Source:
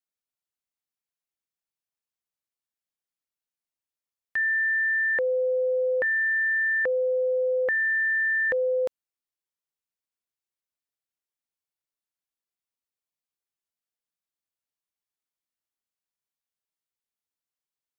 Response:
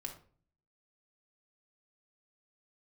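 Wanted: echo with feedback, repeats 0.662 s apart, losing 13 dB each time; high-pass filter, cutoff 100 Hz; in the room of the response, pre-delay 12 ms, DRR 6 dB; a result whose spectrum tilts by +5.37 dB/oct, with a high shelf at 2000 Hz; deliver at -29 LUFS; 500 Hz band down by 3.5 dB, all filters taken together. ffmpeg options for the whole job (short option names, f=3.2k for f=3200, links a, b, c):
-filter_complex "[0:a]highpass=100,equalizer=f=500:t=o:g=-3,highshelf=f=2k:g=-8.5,aecho=1:1:662|1324|1986:0.224|0.0493|0.0108,asplit=2[a][b];[1:a]atrim=start_sample=2205,adelay=12[c];[b][c]afir=irnorm=-1:irlink=0,volume=-3.5dB[d];[a][d]amix=inputs=2:normalize=0,volume=-1dB"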